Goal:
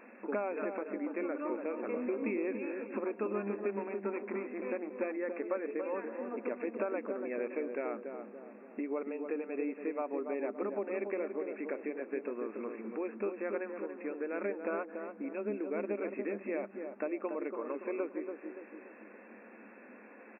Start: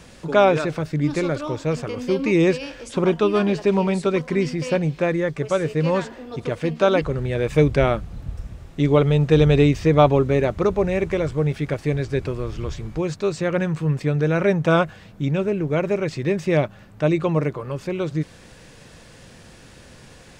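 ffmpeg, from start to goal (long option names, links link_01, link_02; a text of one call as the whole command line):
ffmpeg -i in.wav -filter_complex "[0:a]asettb=1/sr,asplit=3[link_01][link_02][link_03];[link_01]atrim=end=3.484[link_04];[link_02]atrim=start=3.48:end=5.14,asetpts=PTS-STARTPTS,afade=type=in:duration=0.004:curve=qsin,afade=type=out:start_time=1.656:duration=0.004:curve=qsin,aeval=exprs='0.398*(cos(1*acos(clip(val(0)/0.398,-1,1)))-cos(1*PI/2))+0.0355*(cos(8*acos(clip(val(0)/0.398,-1,1)))-cos(8*PI/2))':channel_layout=same[link_05];[link_03]atrim=start=5.136[link_06];[link_04][link_05]acrossfade=duration=0.004:curve1=hsin:curve2=qsin[link_07];[link_07][link_06]acrossfade=duration=0.004:curve1=qsin:curve2=hsin,acompressor=threshold=-26dB:ratio=12,asplit=2[link_08][link_09];[link_09]adelay=285,lowpass=frequency=970:poles=1,volume=-5dB,asplit=2[link_10][link_11];[link_11]adelay=285,lowpass=frequency=970:poles=1,volume=0.5,asplit=2[link_12][link_13];[link_13]adelay=285,lowpass=frequency=970:poles=1,volume=0.5,asplit=2[link_14][link_15];[link_15]adelay=285,lowpass=frequency=970:poles=1,volume=0.5,asplit=2[link_16][link_17];[link_17]adelay=285,lowpass=frequency=970:poles=1,volume=0.5,asplit=2[link_18][link_19];[link_19]adelay=285,lowpass=frequency=970:poles=1,volume=0.5[link_20];[link_08][link_10][link_12][link_14][link_16][link_18][link_20]amix=inputs=7:normalize=0,afftfilt=real='re*between(b*sr/4096,200,2700)':imag='im*between(b*sr/4096,200,2700)':win_size=4096:overlap=0.75,volume=-5.5dB" out.wav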